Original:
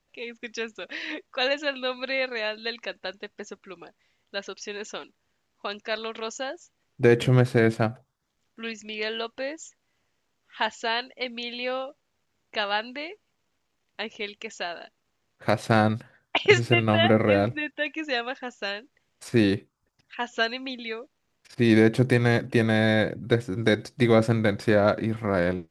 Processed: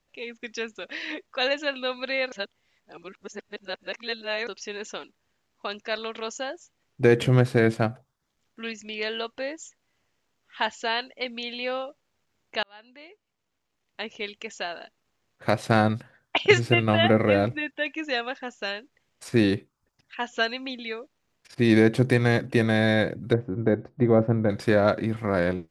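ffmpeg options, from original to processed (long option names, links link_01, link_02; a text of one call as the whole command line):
ffmpeg -i in.wav -filter_complex "[0:a]asplit=3[link_01][link_02][link_03];[link_01]afade=type=out:start_time=23.32:duration=0.02[link_04];[link_02]lowpass=1000,afade=type=in:start_time=23.32:duration=0.02,afade=type=out:start_time=24.49:duration=0.02[link_05];[link_03]afade=type=in:start_time=24.49:duration=0.02[link_06];[link_04][link_05][link_06]amix=inputs=3:normalize=0,asplit=4[link_07][link_08][link_09][link_10];[link_07]atrim=end=2.322[link_11];[link_08]atrim=start=2.318:end=4.472,asetpts=PTS-STARTPTS,areverse[link_12];[link_09]atrim=start=4.468:end=12.63,asetpts=PTS-STARTPTS,afade=type=out:start_time=8.158:duration=0.004:curve=hsin[link_13];[link_10]atrim=start=12.63,asetpts=PTS-STARTPTS,afade=type=in:duration=1.61[link_14];[link_11][link_12]acrossfade=duration=0.004:curve1=hsin:curve2=hsin[link_15];[link_13][link_14]concat=n=2:v=0:a=1[link_16];[link_15][link_16]acrossfade=duration=0.004:curve1=hsin:curve2=hsin" out.wav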